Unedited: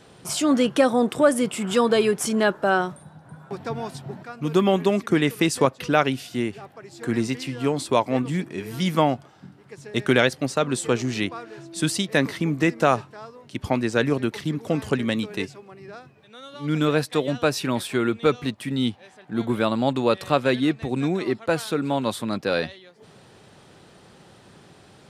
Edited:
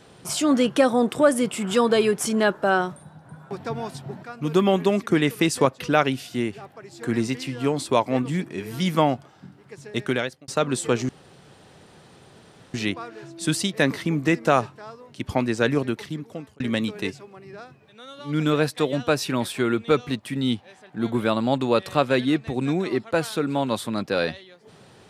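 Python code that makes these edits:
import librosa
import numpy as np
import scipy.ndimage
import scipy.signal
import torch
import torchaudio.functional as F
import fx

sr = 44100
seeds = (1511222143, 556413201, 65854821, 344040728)

y = fx.edit(x, sr, fx.fade_out_span(start_s=9.83, length_s=0.65),
    fx.insert_room_tone(at_s=11.09, length_s=1.65),
    fx.fade_out_span(start_s=14.12, length_s=0.83), tone=tone)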